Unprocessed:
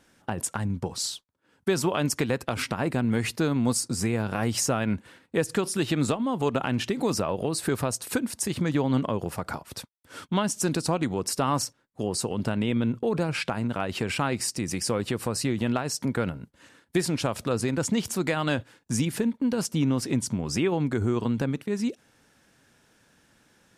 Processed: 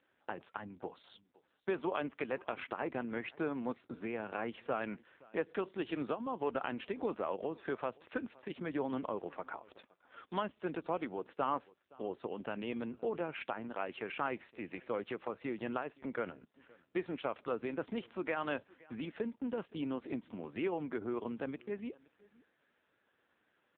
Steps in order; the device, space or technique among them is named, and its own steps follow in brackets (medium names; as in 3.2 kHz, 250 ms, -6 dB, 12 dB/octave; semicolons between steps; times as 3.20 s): satellite phone (band-pass 330–3100 Hz; delay 518 ms -24 dB; trim -7 dB; AMR-NB 5.9 kbps 8 kHz)